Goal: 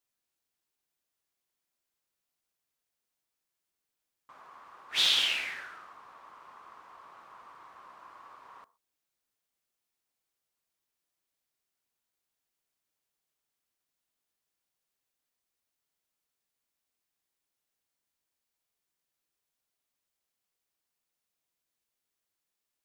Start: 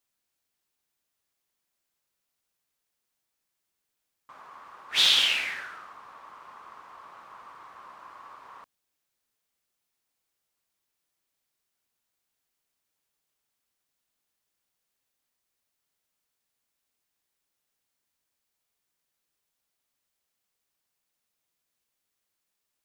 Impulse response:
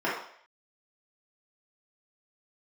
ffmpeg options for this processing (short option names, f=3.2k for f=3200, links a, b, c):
-filter_complex "[0:a]asplit=2[a][b];[1:a]atrim=start_sample=2205,atrim=end_sample=6174,lowpass=1.2k[c];[b][c]afir=irnorm=-1:irlink=0,volume=-27dB[d];[a][d]amix=inputs=2:normalize=0,volume=-4.5dB"